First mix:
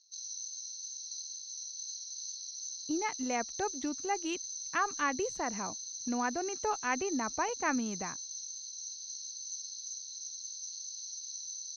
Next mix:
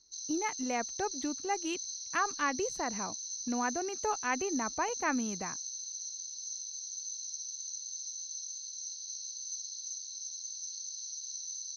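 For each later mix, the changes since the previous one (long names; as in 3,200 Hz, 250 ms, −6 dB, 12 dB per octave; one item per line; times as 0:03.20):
speech: entry −2.60 s
master: remove low-pass filter 7,600 Hz 12 dB per octave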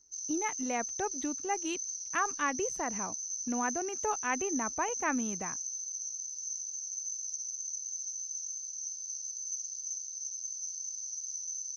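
background: remove low-pass with resonance 4,100 Hz, resonance Q 12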